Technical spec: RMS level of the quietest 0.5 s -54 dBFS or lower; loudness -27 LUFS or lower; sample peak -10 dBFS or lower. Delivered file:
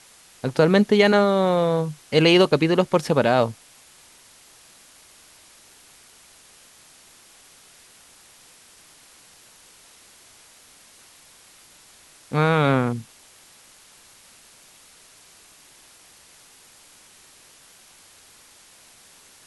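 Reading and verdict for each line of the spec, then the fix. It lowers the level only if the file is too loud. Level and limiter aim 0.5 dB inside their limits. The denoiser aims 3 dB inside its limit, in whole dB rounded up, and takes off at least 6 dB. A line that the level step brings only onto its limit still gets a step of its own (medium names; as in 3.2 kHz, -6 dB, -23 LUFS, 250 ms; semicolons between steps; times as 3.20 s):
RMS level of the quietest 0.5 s -51 dBFS: fail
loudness -19.5 LUFS: fail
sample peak -5.5 dBFS: fail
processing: trim -8 dB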